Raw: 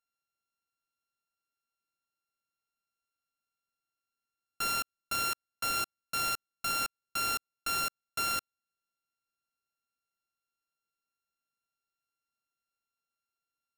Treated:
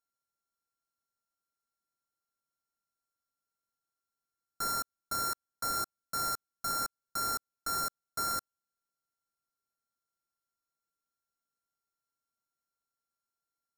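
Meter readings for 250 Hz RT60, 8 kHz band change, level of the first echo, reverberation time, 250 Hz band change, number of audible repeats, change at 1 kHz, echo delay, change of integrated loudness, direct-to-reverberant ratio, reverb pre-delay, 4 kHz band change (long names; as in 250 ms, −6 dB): no reverb audible, 0.0 dB, no echo audible, no reverb audible, 0.0 dB, no echo audible, −0.5 dB, no echo audible, −1.5 dB, no reverb audible, no reverb audible, −4.0 dB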